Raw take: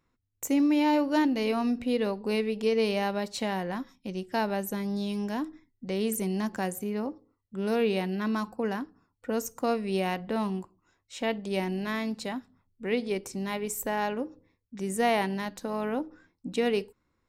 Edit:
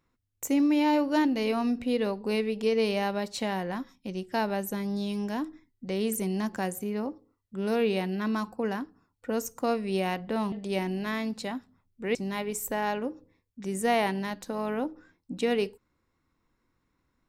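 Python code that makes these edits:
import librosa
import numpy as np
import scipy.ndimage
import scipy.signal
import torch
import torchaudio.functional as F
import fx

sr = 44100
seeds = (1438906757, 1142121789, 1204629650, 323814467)

y = fx.edit(x, sr, fx.cut(start_s=10.52, length_s=0.81),
    fx.cut(start_s=12.96, length_s=0.34), tone=tone)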